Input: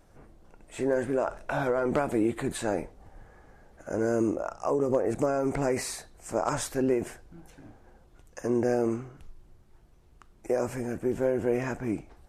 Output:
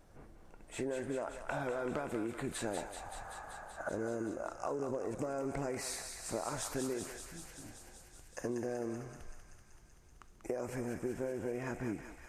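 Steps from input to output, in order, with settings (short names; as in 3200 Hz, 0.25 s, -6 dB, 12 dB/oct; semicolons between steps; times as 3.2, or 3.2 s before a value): 2.77–3.89 band shelf 1000 Hz +14.5 dB; compressor, threshold -32 dBFS, peak gain reduction 11.5 dB; on a send: thinning echo 0.191 s, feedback 80%, high-pass 990 Hz, level -5.5 dB; on the sum: gain -2.5 dB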